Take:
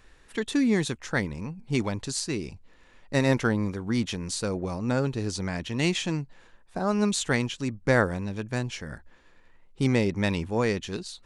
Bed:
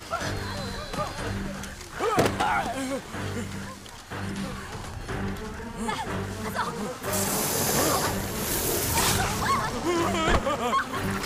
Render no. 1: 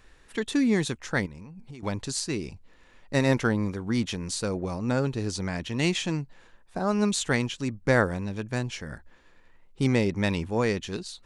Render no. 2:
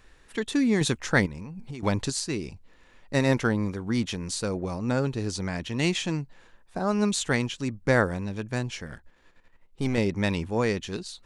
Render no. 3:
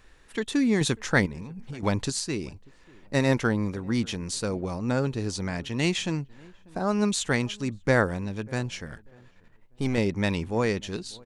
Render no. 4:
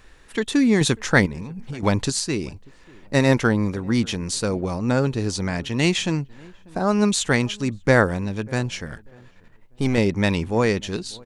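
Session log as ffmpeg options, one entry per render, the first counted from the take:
-filter_complex "[0:a]asettb=1/sr,asplit=3[a][b][c];[a]atrim=end=1.264[d];[b]atrim=start=1.26:end=1.83,asetpts=PTS-STARTPTS,afade=t=in:d=0.004:c=qsin,afade=t=out:st=0.566:d=0.004:c=qsin,acompressor=threshold=-39dB:ratio=12:attack=3.2:release=140:knee=1:detection=peak[e];[c]atrim=start=1.826[f];[d][e]acrossfade=d=0.004:c1=hsin:c2=qsin[g];[g][f]acrossfade=d=0.004:c1=qsin:c2=hsin"
-filter_complex "[0:a]asettb=1/sr,asplit=3[a][b][c];[a]atrim=end=0.814[d];[b]atrim=start=0.81:end=2.1,asetpts=PTS-STARTPTS,afade=t=in:d=0.004:c=qsin,afade=t=out:st=1.286:d=0.004:c=qsin,acontrast=32[e];[c]atrim=start=2.096[f];[d][e]acrossfade=d=0.004:c1=hsin:c2=qsin[g];[g][f]acrossfade=d=0.004:c1=qsin:c2=hsin,asettb=1/sr,asplit=3[h][i][j];[h]atrim=end=8.864[k];[i]atrim=start=8.86:end=9.98,asetpts=PTS-STARTPTS,afade=t=in:d=0.004:c=qsin,afade=t=out:st=1.116:d=0.004:c=qsin,aeval=exprs='if(lt(val(0),0),0.447*val(0),val(0))':c=same[l];[j]atrim=start=9.976[m];[k][l]acrossfade=d=0.004:c1=hsin:c2=qsin[n];[n][m]acrossfade=d=0.004:c1=qsin:c2=hsin"
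-filter_complex "[0:a]asplit=2[a][b];[b]adelay=592,lowpass=f=1k:p=1,volume=-24dB,asplit=2[c][d];[d]adelay=592,lowpass=f=1k:p=1,volume=0.27[e];[a][c][e]amix=inputs=3:normalize=0"
-af "volume=5.5dB"

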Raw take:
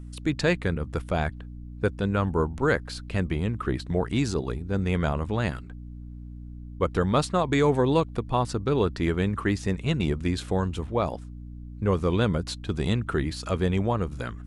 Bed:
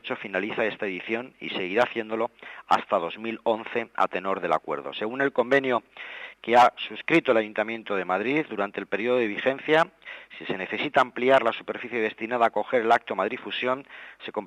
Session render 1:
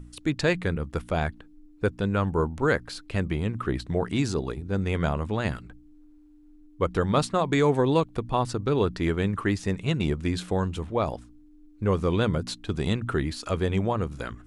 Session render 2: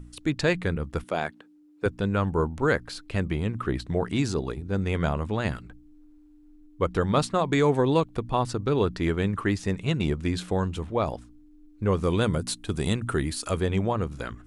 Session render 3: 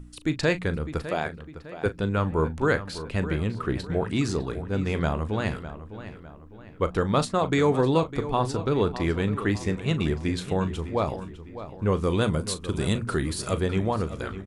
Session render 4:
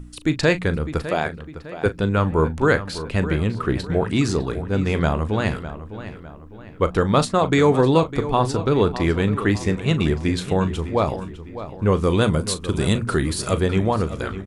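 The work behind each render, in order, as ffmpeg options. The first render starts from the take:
-af "bandreject=f=60:t=h:w=4,bandreject=f=120:t=h:w=4,bandreject=f=180:t=h:w=4,bandreject=f=240:t=h:w=4"
-filter_complex "[0:a]asettb=1/sr,asplit=3[a][b][c];[a]atrim=end=1.044[d];[b]atrim=start=1.04:end=1.86,asetpts=PTS-STARTPTS,afade=t=in:d=0.004:c=qsin,afade=t=out:st=0.816:d=0.004:c=qsin,highpass=240[e];[c]atrim=start=1.856[f];[d][e]acrossfade=d=0.004:c1=hsin:c2=qsin[g];[g][f]acrossfade=d=0.004:c1=qsin:c2=hsin,asettb=1/sr,asplit=3[h][i][j];[h]atrim=end=12.034[k];[i]atrim=start=12.03:end=13.61,asetpts=PTS-STARTPTS,afade=t=in:d=0.004:c=qsin,afade=t=out:st=1.576:d=0.004:c=qsin,equalizer=f=9.5k:t=o:w=0.76:g=12[l];[j]atrim=start=13.606[m];[k][l]acrossfade=d=0.004:c1=hsin:c2=qsin[n];[n][m]acrossfade=d=0.004:c1=qsin:c2=hsin"
-filter_complex "[0:a]asplit=2[a][b];[b]adelay=38,volume=-13.5dB[c];[a][c]amix=inputs=2:normalize=0,asplit=2[d][e];[e]adelay=605,lowpass=f=4k:p=1,volume=-12.5dB,asplit=2[f][g];[g]adelay=605,lowpass=f=4k:p=1,volume=0.44,asplit=2[h][i];[i]adelay=605,lowpass=f=4k:p=1,volume=0.44,asplit=2[j][k];[k]adelay=605,lowpass=f=4k:p=1,volume=0.44[l];[d][f][h][j][l]amix=inputs=5:normalize=0"
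-af "volume=5.5dB"

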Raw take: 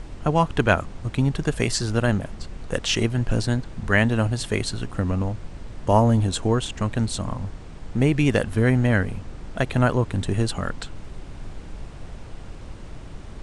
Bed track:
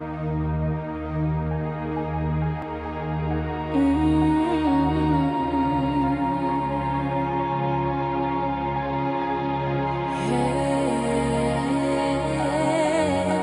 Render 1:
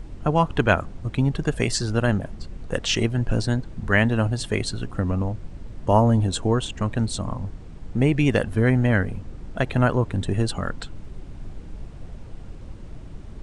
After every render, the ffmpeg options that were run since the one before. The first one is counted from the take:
-af "afftdn=nr=7:nf=-40"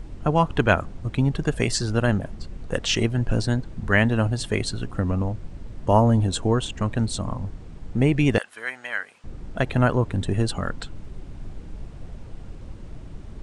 -filter_complex "[0:a]asettb=1/sr,asplit=3[a][b][c];[a]atrim=end=8.384[d];[b]atrim=start=8.38:end=9.24,asetpts=PTS-STARTPTS,afade=t=in:d=0.004:c=qsin,afade=t=out:st=0.856:d=0.004:c=qsin,highpass=1.3k[e];[c]atrim=start=9.236[f];[d][e]acrossfade=d=0.004:c1=hsin:c2=qsin[g];[g][f]acrossfade=d=0.004:c1=qsin:c2=hsin"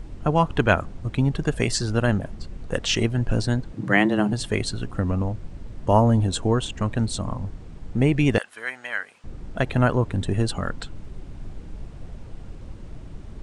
-filter_complex "[0:a]asettb=1/sr,asplit=3[a][b][c];[a]atrim=end=3.734[d];[b]atrim=start=3.73:end=4.33,asetpts=PTS-STARTPTS,afade=t=in:d=0.004:c=qsin,afade=t=out:st=0.596:d=0.004:c=qsin,afreqshift=100[e];[c]atrim=start=4.326[f];[d][e]acrossfade=d=0.004:c1=hsin:c2=qsin[g];[g][f]acrossfade=d=0.004:c1=qsin:c2=hsin"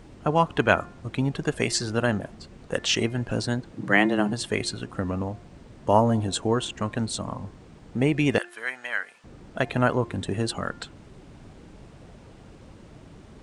-af "highpass=f=220:p=1,bandreject=f=351.6:t=h:w=4,bandreject=f=703.2:t=h:w=4,bandreject=f=1.0548k:t=h:w=4,bandreject=f=1.4064k:t=h:w=4,bandreject=f=1.758k:t=h:w=4,bandreject=f=2.1096k:t=h:w=4,bandreject=f=2.4612k:t=h:w=4"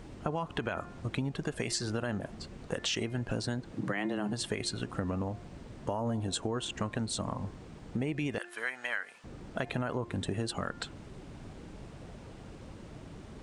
-af "alimiter=limit=-15dB:level=0:latency=1:release=38,acompressor=threshold=-30dB:ratio=6"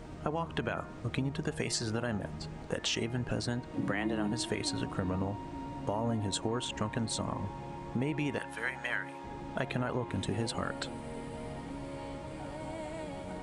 -filter_complex "[1:a]volume=-20dB[a];[0:a][a]amix=inputs=2:normalize=0"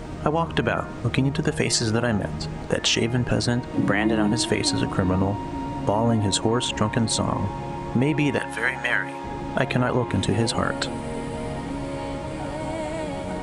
-af "volume=11.5dB"

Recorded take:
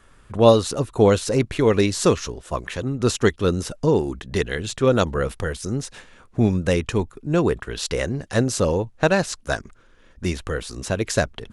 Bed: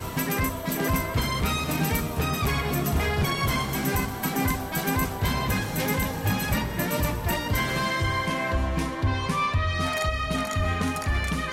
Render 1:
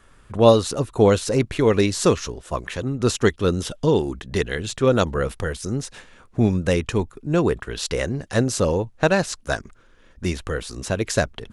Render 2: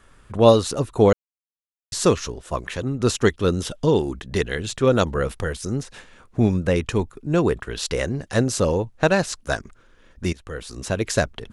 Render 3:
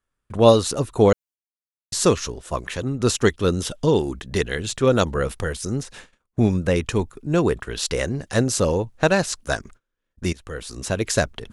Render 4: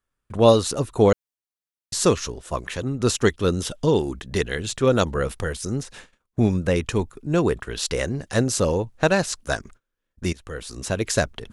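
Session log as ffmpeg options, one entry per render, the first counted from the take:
-filter_complex "[0:a]asettb=1/sr,asplit=3[a][b][c];[a]atrim=end=3.614[d];[b]atrim=start=3.61:end=4.02,asetpts=PTS-STARTPTS,afade=t=in:d=0.004:c=qsin,afade=t=out:st=0.406:d=0.004:c=qsin,equalizer=f=3.3k:w=4.4:g=13.5[e];[c]atrim=start=4.016[f];[d][e]acrossfade=d=0.004:c1=hsin:c2=qsin[g];[g][f]acrossfade=d=0.004:c1=qsin:c2=hsin"
-filter_complex "[0:a]asettb=1/sr,asplit=3[a][b][c];[a]atrim=end=5.834[d];[b]atrim=start=5.83:end=6.76,asetpts=PTS-STARTPTS,afade=t=in:d=0.004:c=qsin,afade=t=out:st=0.926:d=0.004:c=qsin,acrossover=split=2800[e][f];[f]acompressor=threshold=-40dB:ratio=4:attack=1:release=60[g];[e][g]amix=inputs=2:normalize=0[h];[c]atrim=start=6.756[i];[d][h]acrossfade=d=0.004:c1=hsin:c2=qsin[j];[j][i]acrossfade=d=0.004:c1=qsin:c2=hsin,asplit=4[k][l][m][n];[k]atrim=end=1.13,asetpts=PTS-STARTPTS,afade=t=out:st=1.126:d=0.004:c=hsin[o];[l]atrim=start=1.13:end=1.92,asetpts=PTS-STARTPTS,volume=0[p];[m]atrim=start=1.92:end=10.33,asetpts=PTS-STARTPTS,afade=t=in:d=0.004:c=hsin,afade=t=out:st=8.406:d=0.004:c=hsin:silence=0.112202[q];[n]atrim=start=10.33,asetpts=PTS-STARTPTS,afade=t=in:d=0.74:c=qsin:silence=0.112202[r];[o][p][q][r]concat=n=4:v=0:a=1"
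-af "agate=range=-28dB:threshold=-44dB:ratio=16:detection=peak,highshelf=f=5.3k:g=4.5"
-af "volume=-1dB,alimiter=limit=-3dB:level=0:latency=1"

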